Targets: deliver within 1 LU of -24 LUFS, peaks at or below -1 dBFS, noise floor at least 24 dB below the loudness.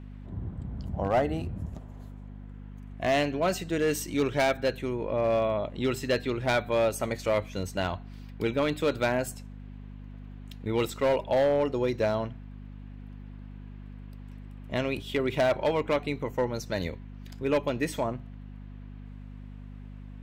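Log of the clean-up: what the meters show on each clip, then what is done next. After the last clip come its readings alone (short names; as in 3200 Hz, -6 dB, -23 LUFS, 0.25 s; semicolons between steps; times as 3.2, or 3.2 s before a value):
clipped 0.9%; flat tops at -19.0 dBFS; hum 50 Hz; harmonics up to 250 Hz; hum level -41 dBFS; loudness -29.0 LUFS; peak -19.0 dBFS; loudness target -24.0 LUFS
-> clip repair -19 dBFS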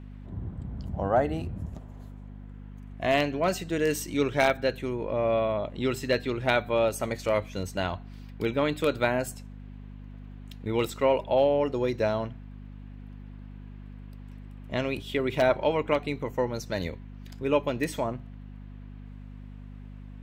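clipped 0.0%; hum 50 Hz; harmonics up to 250 Hz; hum level -40 dBFS
-> de-hum 50 Hz, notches 5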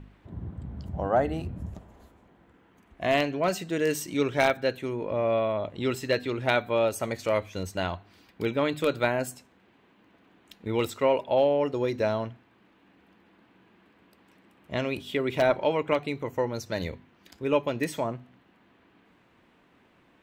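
hum none; loudness -28.0 LUFS; peak -10.0 dBFS; loudness target -24.0 LUFS
-> gain +4 dB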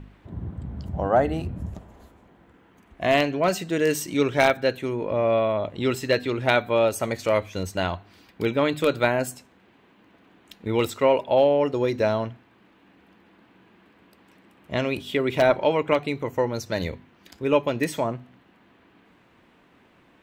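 loudness -24.0 LUFS; peak -6.0 dBFS; noise floor -58 dBFS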